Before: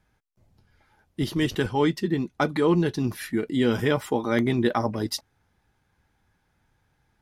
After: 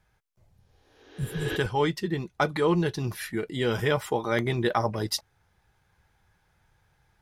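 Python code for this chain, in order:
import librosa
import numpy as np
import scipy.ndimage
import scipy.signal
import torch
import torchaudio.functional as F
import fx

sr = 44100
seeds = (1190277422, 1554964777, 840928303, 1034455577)

y = fx.rider(x, sr, range_db=10, speed_s=2.0)
y = fx.peak_eq(y, sr, hz=260.0, db=-11.5, octaves=0.58)
y = fx.spec_repair(y, sr, seeds[0], start_s=0.6, length_s=0.94, low_hz=240.0, high_hz=6900.0, source='both')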